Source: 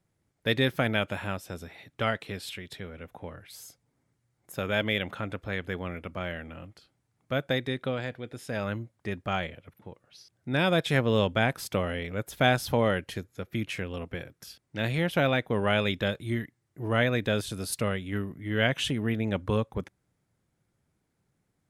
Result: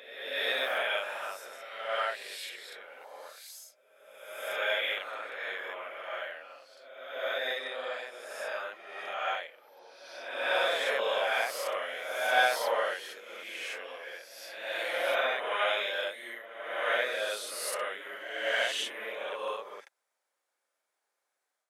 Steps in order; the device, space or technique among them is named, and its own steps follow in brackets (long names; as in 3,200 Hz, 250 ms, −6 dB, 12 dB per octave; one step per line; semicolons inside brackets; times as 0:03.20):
ghost voice (reversed playback; convolution reverb RT60 1.4 s, pre-delay 27 ms, DRR −6 dB; reversed playback; high-pass filter 570 Hz 24 dB per octave)
level −7 dB